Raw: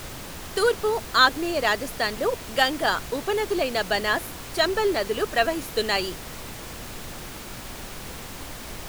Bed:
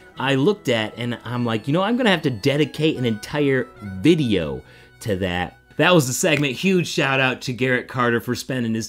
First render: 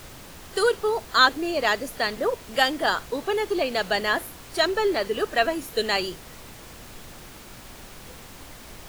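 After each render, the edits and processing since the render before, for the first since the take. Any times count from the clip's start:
noise reduction from a noise print 6 dB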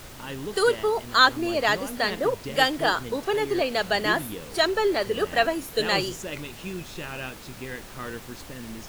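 mix in bed −17 dB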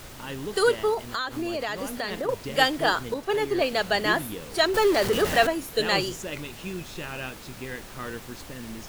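0:00.94–0:02.29: downward compressor 12 to 1, threshold −25 dBFS
0:03.14–0:03.73: multiband upward and downward expander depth 70%
0:04.74–0:05.47: converter with a step at zero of −25 dBFS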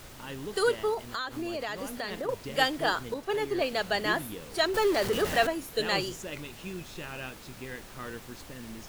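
level −4.5 dB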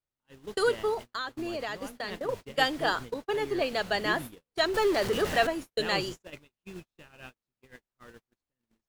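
noise gate −36 dBFS, range −47 dB
high-shelf EQ 10,000 Hz −6.5 dB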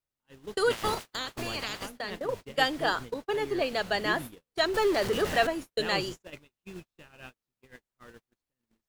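0:00.70–0:01.85: ceiling on every frequency bin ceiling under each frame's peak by 22 dB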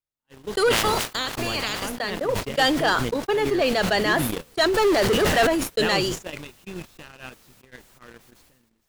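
leveller curve on the samples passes 2
level that may fall only so fast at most 39 dB per second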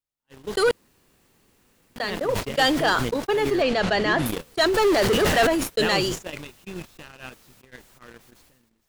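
0:00.71–0:01.96: fill with room tone
0:03.62–0:04.26: high-frequency loss of the air 84 metres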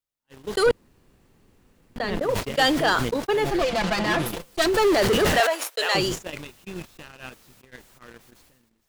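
0:00.66–0:02.22: spectral tilt −2 dB per octave
0:03.44–0:04.67: lower of the sound and its delayed copy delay 5.8 ms
0:05.40–0:05.95: high-pass filter 530 Hz 24 dB per octave

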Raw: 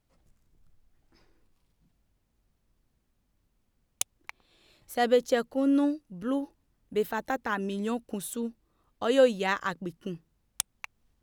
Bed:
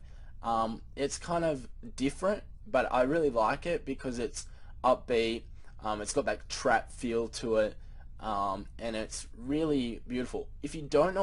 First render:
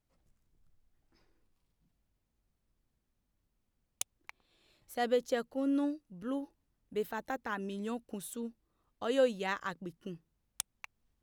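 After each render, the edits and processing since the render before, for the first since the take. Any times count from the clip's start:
level −7 dB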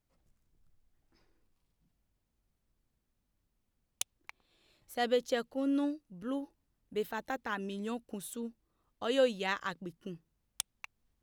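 dynamic equaliser 3,400 Hz, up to +5 dB, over −52 dBFS, Q 1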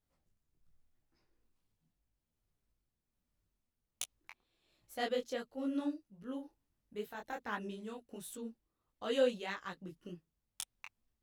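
amplitude tremolo 1.2 Hz, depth 39%
micro pitch shift up and down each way 50 cents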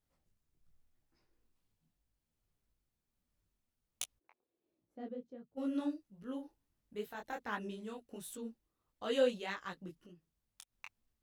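0:04.18–0:05.56: resonant band-pass 570 Hz → 130 Hz, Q 1.7
0:09.91–0:10.76: downward compressor 2.5 to 1, threshold −58 dBFS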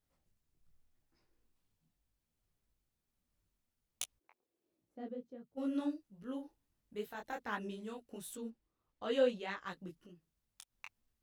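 0:08.50–0:09.67: low-pass filter 3,500 Hz 6 dB per octave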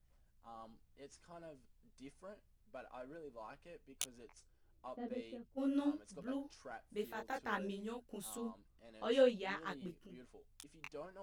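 mix in bed −24 dB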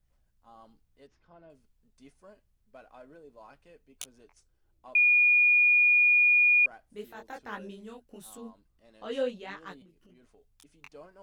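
0:01.07–0:01.50: high-frequency loss of the air 250 metres
0:04.95–0:06.66: beep over 2,440 Hz −18 dBFS
0:09.82–0:10.61: downward compressor 16 to 1, threshold −54 dBFS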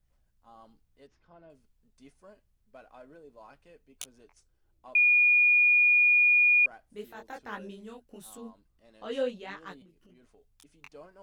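no processing that can be heard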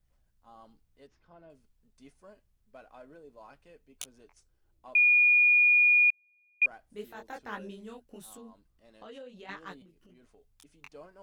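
0:06.10–0:06.62: flat-topped band-pass 630 Hz, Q 3.9
0:08.24–0:09.49: downward compressor, threshold −44 dBFS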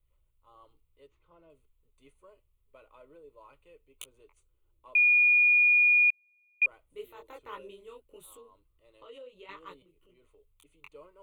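phaser with its sweep stopped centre 1,100 Hz, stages 8

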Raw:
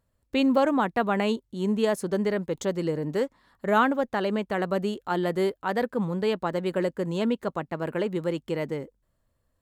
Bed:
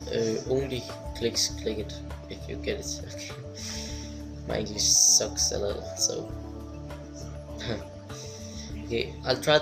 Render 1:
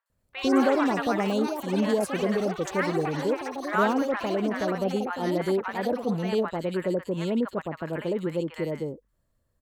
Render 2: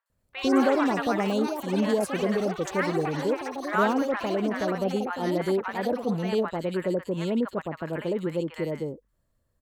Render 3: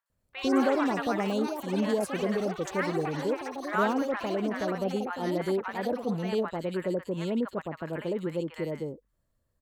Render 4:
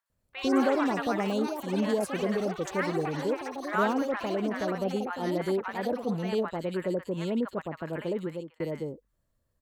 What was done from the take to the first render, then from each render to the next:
delay with pitch and tempo change per echo 124 ms, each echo +6 semitones, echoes 3, each echo −6 dB; three-band delay without the direct sound mids, highs, lows 60/100 ms, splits 900/2,800 Hz
no processing that can be heard
level −3 dB
0:08.19–0:08.60: fade out

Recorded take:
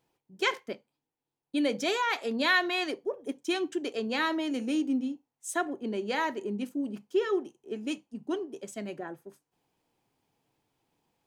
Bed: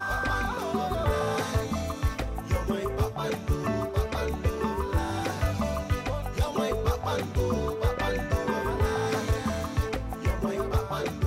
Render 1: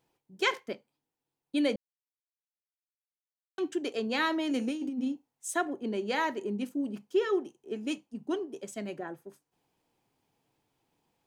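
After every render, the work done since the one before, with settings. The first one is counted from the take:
0:01.76–0:03.58: silence
0:04.49–0:05.48: compressor whose output falls as the input rises −30 dBFS, ratio −0.5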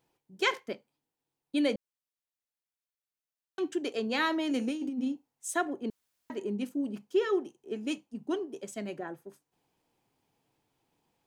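0:05.90–0:06.30: fill with room tone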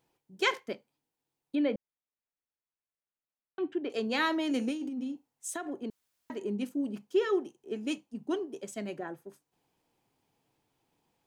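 0:01.55–0:03.90: high-frequency loss of the air 420 metres
0:04.73–0:06.43: downward compressor, threshold −32 dBFS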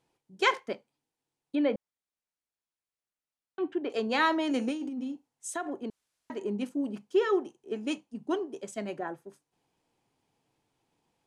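dynamic equaliser 920 Hz, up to +6 dB, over −46 dBFS, Q 0.82
low-pass filter 11,000 Hz 24 dB per octave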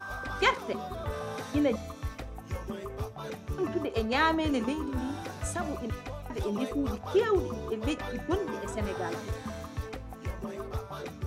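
mix in bed −9 dB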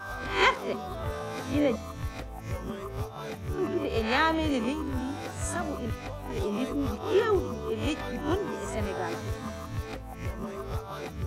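peak hold with a rise ahead of every peak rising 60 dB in 0.43 s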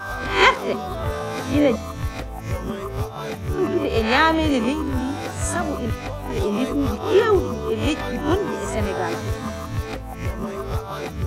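level +8 dB

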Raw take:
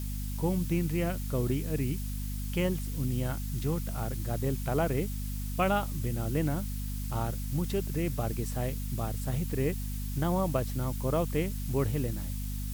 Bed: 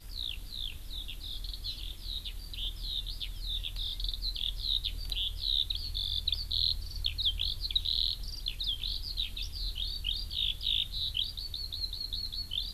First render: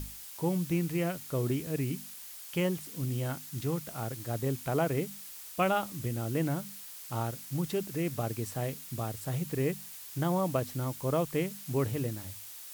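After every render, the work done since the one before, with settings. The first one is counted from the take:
mains-hum notches 50/100/150/200/250 Hz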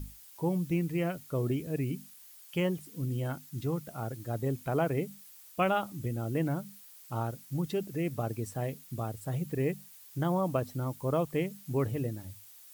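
broadband denoise 10 dB, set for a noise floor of −46 dBFS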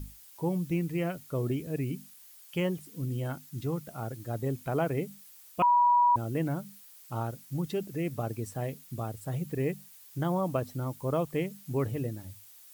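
0:05.62–0:06.16: beep over 969 Hz −19 dBFS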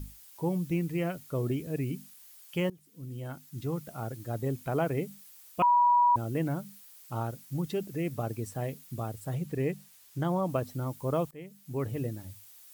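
0:02.70–0:03.82: fade in, from −20 dB
0:09.34–0:10.49: high-shelf EQ 11,000 Hz −6.5 dB
0:11.31–0:12.03: fade in linear, from −21.5 dB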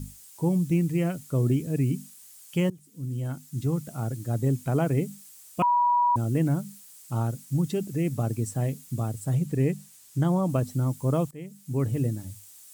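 graphic EQ with 10 bands 125 Hz +8 dB, 250 Hz +6 dB, 8,000 Hz +10 dB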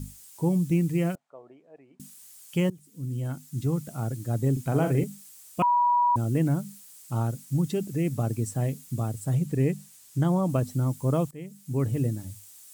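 0:01.15–0:02.00: four-pole ladder band-pass 840 Hz, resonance 55%
0:04.52–0:05.04: double-tracking delay 45 ms −7 dB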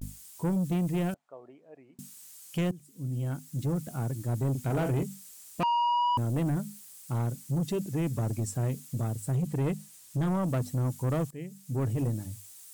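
pitch vibrato 0.33 Hz 54 cents
soft clipping −23.5 dBFS, distortion −13 dB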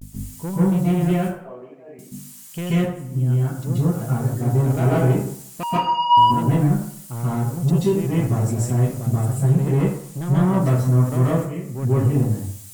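delay with a band-pass on its return 89 ms, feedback 51%, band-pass 1,600 Hz, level −17.5 dB
dense smooth reverb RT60 0.6 s, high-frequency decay 0.6×, pre-delay 120 ms, DRR −9 dB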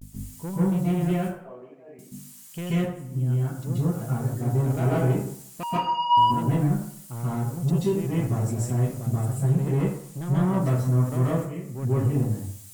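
level −5 dB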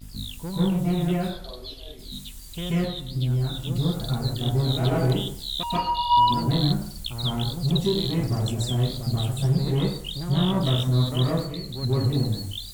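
mix in bed −1 dB

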